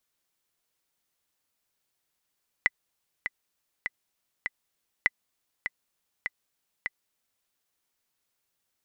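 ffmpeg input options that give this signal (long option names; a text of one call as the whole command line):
ffmpeg -f lavfi -i "aevalsrc='pow(10,(-7.5-9*gte(mod(t,4*60/100),60/100))/20)*sin(2*PI*2000*mod(t,60/100))*exp(-6.91*mod(t,60/100)/0.03)':duration=4.8:sample_rate=44100" out.wav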